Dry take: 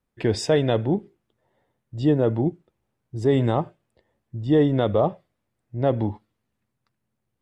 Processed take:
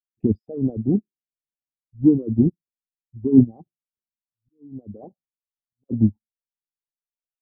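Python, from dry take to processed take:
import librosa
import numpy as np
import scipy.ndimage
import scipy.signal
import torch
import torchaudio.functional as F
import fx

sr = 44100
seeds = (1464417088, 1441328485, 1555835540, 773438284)

y = fx.envelope_sharpen(x, sr, power=3.0)
y = fx.auto_swell(y, sr, attack_ms=679.0, at=(3.43, 5.89), fade=0.02)
y = fx.riaa(y, sr, side='playback')
y = fx.small_body(y, sr, hz=(230.0, 770.0), ring_ms=35, db=16)
y = fx.upward_expand(y, sr, threshold_db=-34.0, expansion=2.5)
y = y * 10.0 ** (-6.0 / 20.0)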